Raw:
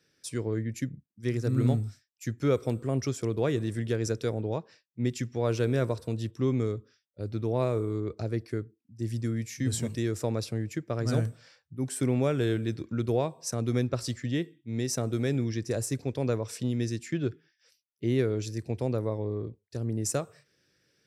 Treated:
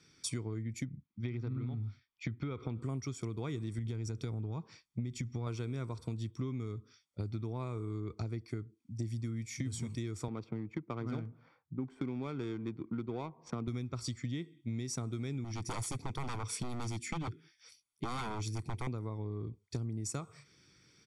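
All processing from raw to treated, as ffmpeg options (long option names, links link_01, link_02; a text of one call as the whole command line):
ffmpeg -i in.wav -filter_complex "[0:a]asettb=1/sr,asplit=3[link_01][link_02][link_03];[link_01]atrim=end=0.854[link_04];[link_02]atrim=start=0.85:end=2.82,asetpts=PTS-STARTPTS,afade=type=in:duration=0.004:curve=qsin,afade=type=out:start_time=1.966:duration=0.004:curve=qsin,lowpass=frequency=3800:width=0.5412,lowpass=frequency=3800:width=1.3066,acompressor=threshold=-29dB:ratio=2.5:attack=3.2:release=140:knee=1:detection=peak[link_05];[link_03]atrim=start=2.816[link_06];[link_04][link_05]acrossfade=duration=0.004:curve1=hsin:curve2=qsin[link_07];[link_07][link_06]acrossfade=duration=0.004:curve1=qsin:curve2=hsin,asettb=1/sr,asplit=3[link_08][link_09][link_10];[link_08]atrim=end=3.784[link_11];[link_09]atrim=start=3.78:end=5.47,asetpts=PTS-STARTPTS,afade=type=in:duration=0.004:curve=qsin,afade=type=out:start_time=1.686:duration=0.004:curve=qsin,lowshelf=frequency=200:gain=8.5,acompressor=threshold=-27dB:ratio=2.5:attack=3.2:release=140:knee=1:detection=peak[link_12];[link_10]atrim=start=5.466[link_13];[link_11][link_12]acrossfade=duration=0.004:curve1=hsin:curve2=qsin[link_14];[link_14][link_13]acrossfade=duration=0.004:curve1=qsin:curve2=hsin,asettb=1/sr,asplit=3[link_15][link_16][link_17];[link_15]atrim=end=10.284[link_18];[link_16]atrim=start=10.28:end=13.68,asetpts=PTS-STARTPTS,afade=type=in:duration=0.004:curve=qsin,afade=type=out:start_time=3.396:duration=0.004:curve=qsin,highpass=180,highshelf=frequency=9600:gain=-8.5,adynamicsmooth=sensitivity=4:basefreq=950[link_19];[link_17]atrim=start=13.676[link_20];[link_18][link_19]acrossfade=duration=0.004:curve1=hsin:curve2=qsin[link_21];[link_21][link_20]acrossfade=duration=0.004:curve1=qsin:curve2=hsin,asettb=1/sr,asplit=3[link_22][link_23][link_24];[link_22]atrim=end=15.444[link_25];[link_23]atrim=start=15.44:end=18.87,asetpts=PTS-STARTPTS,afade=type=in:duration=0.004:curve=qsin,afade=type=out:start_time=3.426:duration=0.004:curve=qsin,equalizer=frequency=10000:width=3.6:gain=10,aeval=exprs='0.0355*(abs(mod(val(0)/0.0355+3,4)-2)-1)':channel_layout=same[link_26];[link_24]atrim=start=18.866[link_27];[link_25][link_26]acrossfade=duration=0.004:curve1=hsin:curve2=qsin[link_28];[link_28][link_27]acrossfade=duration=0.004:curve1=qsin:curve2=hsin,lowpass=frequency=10000:width=0.5412,lowpass=frequency=10000:width=1.3066,aecho=1:1:0.9:0.65,acompressor=threshold=-39dB:ratio=12,volume=4.5dB" out.wav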